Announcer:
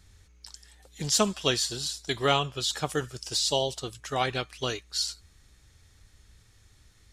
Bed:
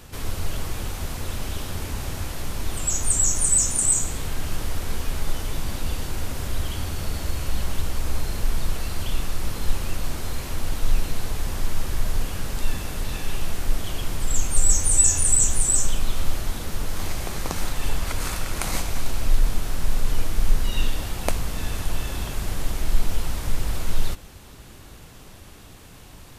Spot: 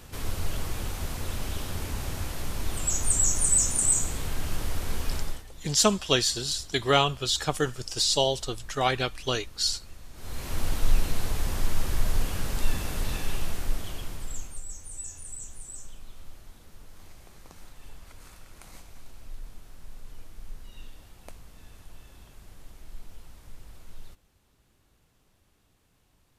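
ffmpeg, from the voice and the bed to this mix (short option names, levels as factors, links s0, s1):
-filter_complex "[0:a]adelay=4650,volume=1.33[s0];[1:a]volume=6.31,afade=t=out:st=5.16:d=0.28:silence=0.133352,afade=t=in:st=10.13:d=0.47:silence=0.112202,afade=t=out:st=13.08:d=1.55:silence=0.0944061[s1];[s0][s1]amix=inputs=2:normalize=0"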